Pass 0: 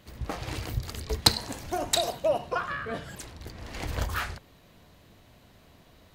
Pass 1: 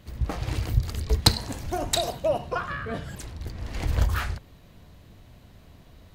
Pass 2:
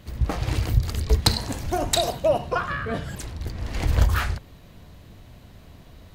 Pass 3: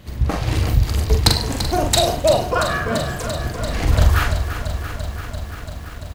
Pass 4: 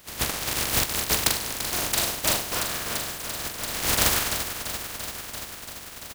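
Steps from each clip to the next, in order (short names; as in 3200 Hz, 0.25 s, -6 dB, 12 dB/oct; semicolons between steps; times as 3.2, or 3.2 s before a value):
low shelf 170 Hz +10.5 dB
maximiser +10 dB; gain -6 dB
doubler 43 ms -4.5 dB; lo-fi delay 0.34 s, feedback 80%, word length 8-bit, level -10 dB; gain +4 dB
spectral contrast lowered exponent 0.24; gain -8.5 dB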